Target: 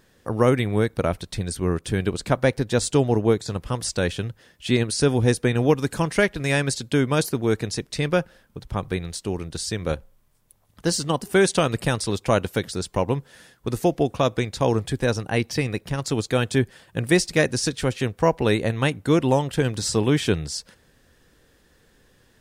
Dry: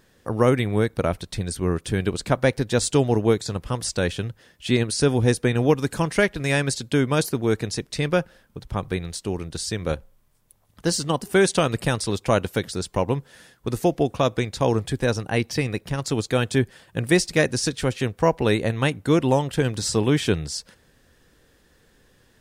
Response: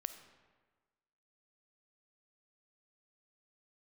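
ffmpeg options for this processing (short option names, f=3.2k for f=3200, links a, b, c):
-filter_complex "[0:a]asettb=1/sr,asplit=3[a][b][c];[a]atrim=end=1.794[d];[b]atrim=start=1.79:end=3.48,asetpts=PTS-STARTPTS,afade=t=in:d=0.004:c=qsin,afade=t=out:st=1.686:d=0.004:c=qsin,adynamicequalizer=threshold=0.02:dfrequency=1600:dqfactor=0.7:tfrequency=1600:tqfactor=0.7:attack=5:release=100:ratio=0.375:range=2:mode=cutabove:tftype=highshelf[e];[c]atrim=start=3.476[f];[d][e]acrossfade=d=0.004:c1=hsin:c2=qsin[g];[g][f]acrossfade=d=0.004:c1=qsin:c2=hsin"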